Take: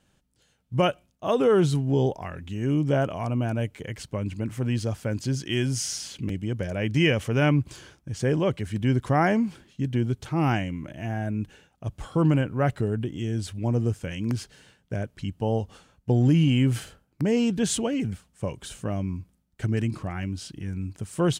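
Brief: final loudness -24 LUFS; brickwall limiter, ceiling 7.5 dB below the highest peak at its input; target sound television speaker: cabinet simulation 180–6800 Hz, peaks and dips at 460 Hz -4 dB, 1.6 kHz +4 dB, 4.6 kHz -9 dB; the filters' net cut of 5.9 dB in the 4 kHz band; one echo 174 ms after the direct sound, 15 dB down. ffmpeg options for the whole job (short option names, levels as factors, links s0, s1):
-af "equalizer=f=4000:t=o:g=-7.5,alimiter=limit=0.133:level=0:latency=1,highpass=f=180:w=0.5412,highpass=f=180:w=1.3066,equalizer=f=460:t=q:w=4:g=-4,equalizer=f=1600:t=q:w=4:g=4,equalizer=f=4600:t=q:w=4:g=-9,lowpass=f=6800:w=0.5412,lowpass=f=6800:w=1.3066,aecho=1:1:174:0.178,volume=2.37"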